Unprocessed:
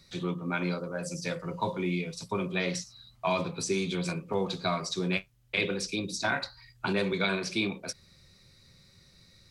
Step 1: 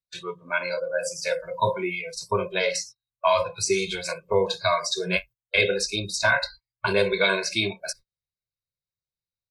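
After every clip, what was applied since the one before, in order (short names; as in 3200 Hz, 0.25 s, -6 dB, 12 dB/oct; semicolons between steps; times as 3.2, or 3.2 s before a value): gate -46 dBFS, range -28 dB; spectral noise reduction 20 dB; comb 1.9 ms, depth 87%; gain +5.5 dB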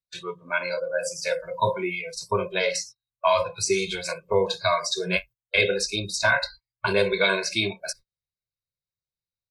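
nothing audible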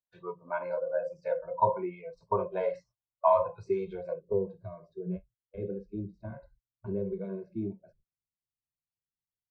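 low-pass sweep 860 Hz -> 270 Hz, 3.81–4.48; gain -7 dB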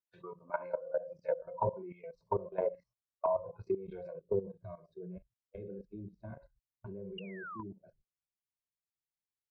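painted sound fall, 7.18–7.63, 940–2900 Hz -22 dBFS; treble ducked by the level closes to 490 Hz, closed at -24.5 dBFS; level quantiser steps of 15 dB; gain +1 dB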